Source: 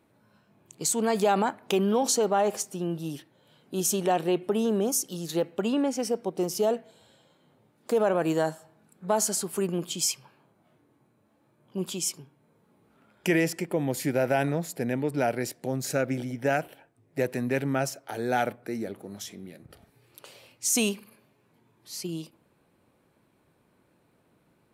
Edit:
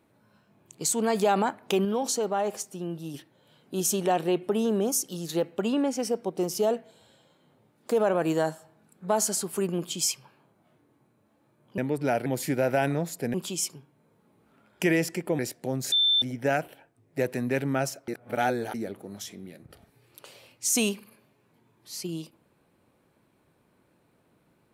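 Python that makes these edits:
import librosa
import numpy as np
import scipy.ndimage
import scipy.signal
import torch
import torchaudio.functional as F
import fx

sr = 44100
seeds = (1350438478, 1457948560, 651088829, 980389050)

y = fx.edit(x, sr, fx.clip_gain(start_s=1.85, length_s=1.29, db=-3.5),
    fx.swap(start_s=11.78, length_s=2.05, other_s=14.91, other_length_s=0.48),
    fx.bleep(start_s=15.92, length_s=0.3, hz=3550.0, db=-19.0),
    fx.reverse_span(start_s=18.08, length_s=0.66), tone=tone)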